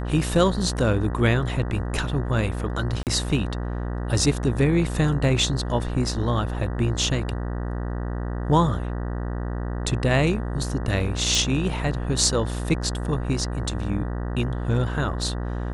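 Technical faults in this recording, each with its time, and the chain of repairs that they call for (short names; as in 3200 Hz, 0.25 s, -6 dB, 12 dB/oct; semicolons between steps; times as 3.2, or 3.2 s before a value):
buzz 60 Hz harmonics 32 -28 dBFS
3.03–3.07 gap 38 ms
11.35 pop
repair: de-click; de-hum 60 Hz, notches 32; interpolate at 3.03, 38 ms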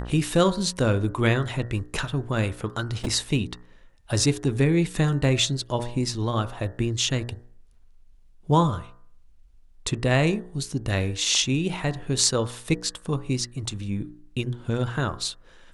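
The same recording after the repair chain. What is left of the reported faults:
none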